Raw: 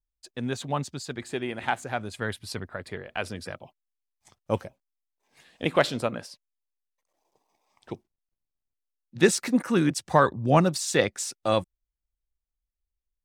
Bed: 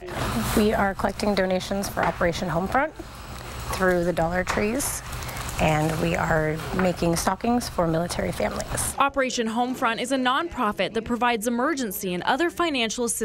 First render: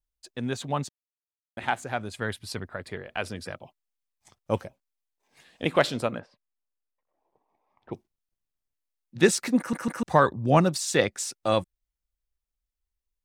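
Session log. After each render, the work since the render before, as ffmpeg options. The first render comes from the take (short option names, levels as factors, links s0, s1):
-filter_complex "[0:a]asettb=1/sr,asplit=3[s0][s1][s2];[s0]atrim=end=6.194[s3];[s1]atrim=start=6.19:end=7.93,asetpts=PTS-STARTPTS,afade=t=in:d=0.004:c=qsin,afade=t=out:st=1.736:d=0.004:c=qsin,lowpass=1600[s4];[s2]atrim=start=7.926[s5];[s3][s4]acrossfade=d=0.004:c1=hsin:c2=qsin[s6];[s6][s5]acrossfade=d=0.004:c1=qsin:c2=hsin,asplit=6[s7][s8][s9][s10][s11][s12];[s7]atrim=end=0.89,asetpts=PTS-STARTPTS,afade=t=out:st=0.886:d=0.004:c=hsin[s13];[s8]atrim=start=0.89:end=1.57,asetpts=PTS-STARTPTS,volume=0[s14];[s9]atrim=start=1.57:end=9.732,asetpts=PTS-STARTPTS,afade=t=in:d=0.004:c=hsin[s15];[s10]atrim=start=9.578:end=9.732[s16];[s11]atrim=start=9.578:end=9.732[s17];[s12]atrim=start=10.028[s18];[s13][s14][s15]concat=n=3:v=0:a=1[s19];[s19][s16]acrossfade=d=0.004:c1=hsin:c2=hsin[s20];[s20][s17]acrossfade=d=0.004:c1=hsin:c2=hsin[s21];[s21][s18]acrossfade=d=0.004:c1=hsin:c2=hsin"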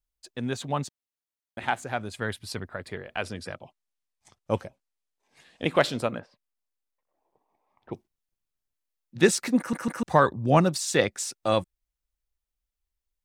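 -filter_complex "[0:a]asettb=1/sr,asplit=3[s0][s1][s2];[s0]atrim=end=3.214[s3];[s1]atrim=start=3.21:end=5.71,asetpts=PTS-STARTPTS,afade=t=in:d=0.004:c=qsin,afade=t=out:st=2.496:d=0.004:c=qsin,lowpass=11000[s4];[s2]atrim=start=5.706[s5];[s3][s4]acrossfade=d=0.004:c1=hsin:c2=qsin[s6];[s6][s5]acrossfade=d=0.004:c1=qsin:c2=hsin"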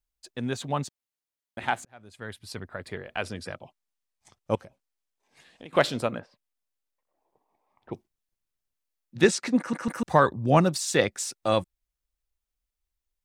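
-filter_complex "[0:a]asettb=1/sr,asplit=3[s0][s1][s2];[s0]atrim=end=4.554[s3];[s1]atrim=start=4.55:end=5.73,asetpts=PTS-STARTPTS,afade=t=in:d=0.004:c=qsin,afade=t=out:st=1.176:d=0.004:c=qsin,acompressor=threshold=0.00708:ratio=4:attack=3.2:release=140:knee=1:detection=peak[s4];[s2]atrim=start=5.726[s5];[s3][s4]acrossfade=d=0.004:c1=hsin:c2=qsin[s6];[s6][s5]acrossfade=d=0.004:c1=qsin:c2=hsin,asettb=1/sr,asplit=3[s7][s8][s9];[s7]atrim=end=9.244[s10];[s8]atrim=start=9.24:end=9.88,asetpts=PTS-STARTPTS,afade=t=in:d=0.004:c=qsin,afade=t=out:st=0.636:d=0.004:c=qsin,highpass=130,lowpass=7300[s11];[s9]atrim=start=9.876[s12];[s10][s11]acrossfade=d=0.004:c1=hsin:c2=qsin[s13];[s13][s12]acrossfade=d=0.004:c1=qsin:c2=hsin,asplit=2[s14][s15];[s14]atrim=end=1.85,asetpts=PTS-STARTPTS,afade=t=out:st=1.846:d=0.004:c=hsin[s16];[s15]atrim=start=1.85,asetpts=PTS-STARTPTS,afade=t=in:d=1.05[s17];[s16][s17]concat=n=2:v=0:a=1"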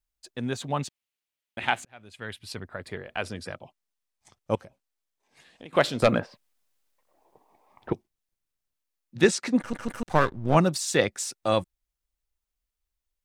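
-filter_complex "[0:a]asettb=1/sr,asplit=3[s0][s1][s2];[s0]atrim=end=0.794[s3];[s1]atrim=start=0.79:end=2.54,asetpts=PTS-STARTPTS,afade=t=in:d=0.004:c=qsin,afade=t=out:st=1.746:d=0.004:c=qsin,equalizer=f=2700:w=1.4:g=8[s4];[s2]atrim=start=2.536[s5];[s3][s4]acrossfade=d=0.004:c1=hsin:c2=qsin[s6];[s6][s5]acrossfade=d=0.004:c1=qsin:c2=hsin,asettb=1/sr,asplit=3[s7][s8][s9];[s7]atrim=end=6.024[s10];[s8]atrim=start=6.02:end=7.93,asetpts=PTS-STARTPTS,afade=t=in:d=0.004:c=qsin,afade=t=out:st=1.906:d=0.004:c=qsin,aeval=exprs='0.282*sin(PI/2*2.24*val(0)/0.282)':c=same[s11];[s9]atrim=start=7.926[s12];[s10][s11]acrossfade=d=0.004:c1=hsin:c2=qsin[s13];[s13][s12]acrossfade=d=0.004:c1=qsin:c2=hsin,asplit=3[s14][s15][s16];[s14]afade=t=out:st=9.6:d=0.02[s17];[s15]aeval=exprs='if(lt(val(0),0),0.251*val(0),val(0))':c=same,afade=t=in:st=9.6:d=0.02,afade=t=out:st=10.54:d=0.02[s18];[s16]afade=t=in:st=10.54:d=0.02[s19];[s17][s18][s19]amix=inputs=3:normalize=0"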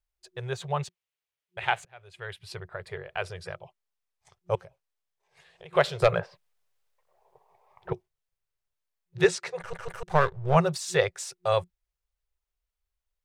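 -af "afftfilt=real='re*(1-between(b*sr/4096,180,360))':imag='im*(1-between(b*sr/4096,180,360))':win_size=4096:overlap=0.75,highshelf=f=4200:g=-7"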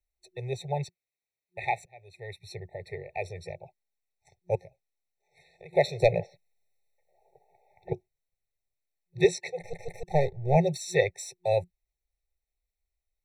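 -filter_complex "[0:a]acrossover=split=130|4600[s0][s1][s2];[s0]crystalizer=i=6:c=0[s3];[s3][s1][s2]amix=inputs=3:normalize=0,afftfilt=real='re*eq(mod(floor(b*sr/1024/890),2),0)':imag='im*eq(mod(floor(b*sr/1024/890),2),0)':win_size=1024:overlap=0.75"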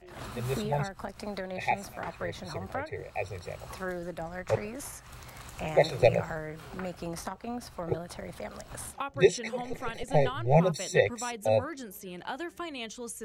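-filter_complex "[1:a]volume=0.188[s0];[0:a][s0]amix=inputs=2:normalize=0"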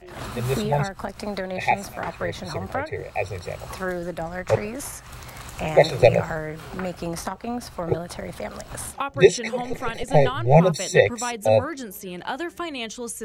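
-af "volume=2.37,alimiter=limit=0.891:level=0:latency=1"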